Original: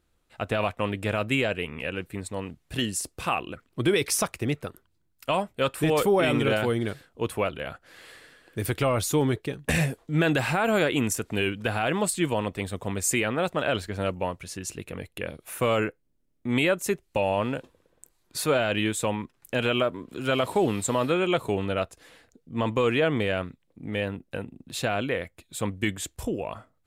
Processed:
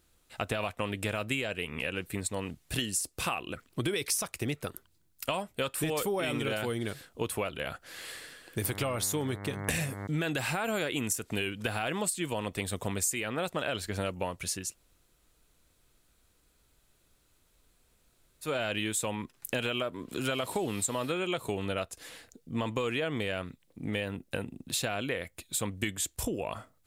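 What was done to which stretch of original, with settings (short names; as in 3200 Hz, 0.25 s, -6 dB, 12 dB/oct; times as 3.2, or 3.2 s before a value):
8.63–10.06 buzz 100 Hz, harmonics 22, -37 dBFS -5 dB/oct
14.63–18.53 room tone, crossfade 0.24 s
whole clip: high shelf 3500 Hz +10 dB; compressor 5:1, threshold -31 dBFS; gain +1.5 dB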